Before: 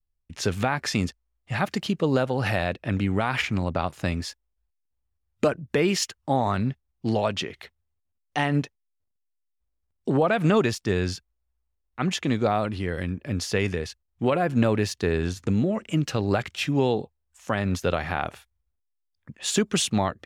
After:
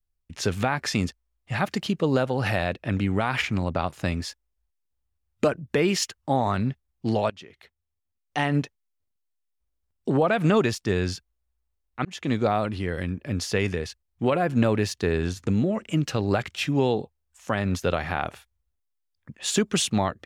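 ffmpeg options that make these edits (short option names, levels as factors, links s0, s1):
-filter_complex "[0:a]asplit=3[s0][s1][s2];[s0]atrim=end=7.3,asetpts=PTS-STARTPTS,afade=t=out:st=7.296:d=0.004:c=hsin:silence=0.0891251[s3];[s1]atrim=start=7.3:end=12.05,asetpts=PTS-STARTPTS,afade=t=in:d=1.17:silence=0.0891251,afade=t=out:st=4.746:d=0.004:c=hsin[s4];[s2]atrim=start=12.05,asetpts=PTS-STARTPTS,afade=t=in:d=0.28[s5];[s3][s4][s5]concat=n=3:v=0:a=1"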